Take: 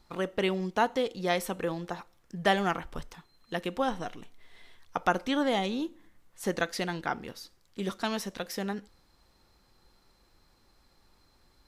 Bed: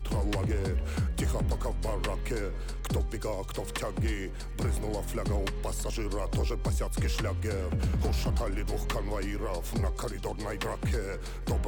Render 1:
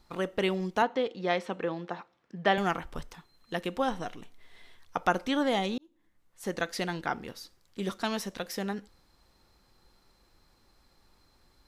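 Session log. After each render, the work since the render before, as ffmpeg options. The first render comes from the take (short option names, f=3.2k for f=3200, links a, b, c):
-filter_complex "[0:a]asettb=1/sr,asplit=3[a][b][c];[a]atrim=end=0.824[d];[b]atrim=start=0.82:end=2.58,asetpts=PTS-STARTPTS,afade=t=in:d=0.004:c=qsin,afade=t=out:st=1.756:d=0.004:c=qsin,highpass=170,lowpass=3.6k[e];[c]atrim=start=2.576[f];[d][e]acrossfade=d=0.004:c1=hsin:c2=qsin[g];[g][f]acrossfade=d=0.004:c1=qsin:c2=hsin,asplit=2[h][i];[h]atrim=end=5.78,asetpts=PTS-STARTPTS,afade=t=out:st=5.776:d=0.004:c=hsin[j];[i]atrim=start=5.78,asetpts=PTS-STARTPTS,afade=t=in:d=1.05[k];[j][k]concat=n=2:v=0:a=1"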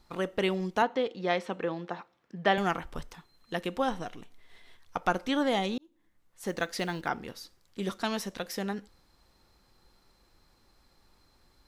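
-filter_complex "[0:a]asettb=1/sr,asplit=3[a][b][c];[a]atrim=end=3.964[d];[b]atrim=start=3.96:end=5.29,asetpts=PTS-STARTPTS,afade=t=in:d=0.004:c=qsin,afade=t=out:st=1.326:d=0.004:c=qsin,aeval=exprs='if(lt(val(0),0),0.708*val(0),val(0))':c=same[e];[c]atrim=start=5.286[f];[d][e]acrossfade=d=0.004:c1=hsin:c2=qsin[g];[g][f]acrossfade=d=0.004:c1=qsin:c2=hsin,asettb=1/sr,asplit=3[h][i][j];[h]atrim=end=6.484[k];[i]atrim=start=6.48:end=7.09,asetpts=PTS-STARTPTS,afade=t=in:d=0.004:c=qsin,afade=t=out:st=0.606:d=0.004:c=qsin,acrusher=bits=8:mode=log:mix=0:aa=0.000001[l];[j]atrim=start=7.086[m];[k][l]acrossfade=d=0.004:c1=hsin:c2=qsin[n];[n][m]acrossfade=d=0.004:c1=qsin:c2=hsin"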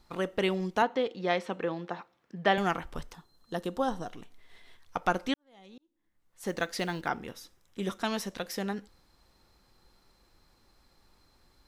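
-filter_complex "[0:a]asettb=1/sr,asplit=3[a][b][c];[a]atrim=end=3.144[d];[b]atrim=start=3.14:end=4.13,asetpts=PTS-STARTPTS,afade=t=in:d=0.004:c=qsin,afade=t=out:st=0.986:d=0.004:c=qsin,equalizer=f=2.3k:w=2.1:g=-13.5[e];[c]atrim=start=4.126[f];[d][e]acrossfade=d=0.004:c1=hsin:c2=qsin[g];[g][f]acrossfade=d=0.004:c1=qsin:c2=hsin,asettb=1/sr,asplit=3[h][i][j];[h]atrim=end=7.184[k];[i]atrim=start=7.18:end=8.08,asetpts=PTS-STARTPTS,afade=t=in:d=0.004:c=qsin,afade=t=out:st=0.896:d=0.004:c=qsin,bandreject=f=4.5k:w=5.1[l];[j]atrim=start=8.076[m];[k][l]acrossfade=d=0.004:c1=hsin:c2=qsin[n];[n][m]acrossfade=d=0.004:c1=qsin:c2=hsin,asplit=2[o][p];[o]atrim=end=5.34,asetpts=PTS-STARTPTS,afade=t=out:st=5.336:d=0.004:c=hsin[q];[p]atrim=start=5.34,asetpts=PTS-STARTPTS,afade=t=in:d=1.13:c=qua[r];[q][r]concat=n=2:v=0:a=1"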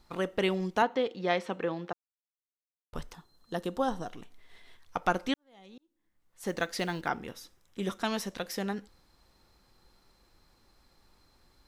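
-filter_complex "[0:a]asplit=3[a][b][c];[a]atrim=end=1.93,asetpts=PTS-STARTPTS,afade=t=out:st=1.926:d=0.004:c=hsin[d];[b]atrim=start=1.93:end=2.93,asetpts=PTS-STARTPTS,volume=0[e];[c]atrim=start=2.93,asetpts=PTS-STARTPTS,afade=t=in:d=0.004:c=hsin[f];[d][e][f]concat=n=3:v=0:a=1"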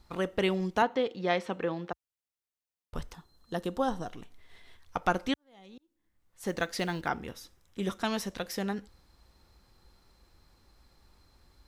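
-af "equalizer=f=62:w=0.86:g=7.5"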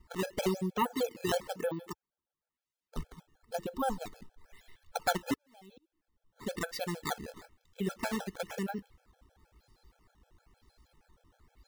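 -af "acrusher=samples=11:mix=1:aa=0.000001:lfo=1:lforange=17.6:lforate=1,afftfilt=real='re*gt(sin(2*PI*6.4*pts/sr)*(1-2*mod(floor(b*sr/1024/440),2)),0)':imag='im*gt(sin(2*PI*6.4*pts/sr)*(1-2*mod(floor(b*sr/1024/440),2)),0)':win_size=1024:overlap=0.75"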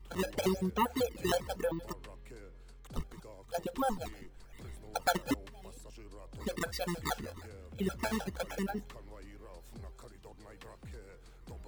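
-filter_complex "[1:a]volume=-18.5dB[a];[0:a][a]amix=inputs=2:normalize=0"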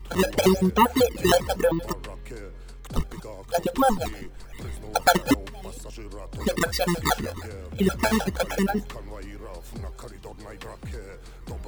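-af "volume=12dB,alimiter=limit=-3dB:level=0:latency=1"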